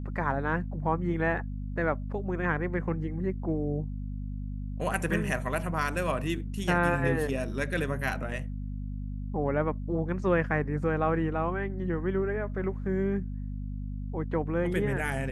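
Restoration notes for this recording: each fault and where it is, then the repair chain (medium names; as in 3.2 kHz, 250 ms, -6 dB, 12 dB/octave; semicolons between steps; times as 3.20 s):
hum 50 Hz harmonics 5 -35 dBFS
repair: de-hum 50 Hz, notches 5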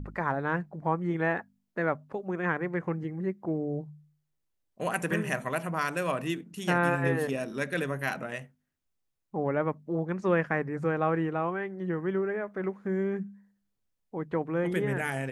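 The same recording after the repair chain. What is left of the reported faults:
nothing left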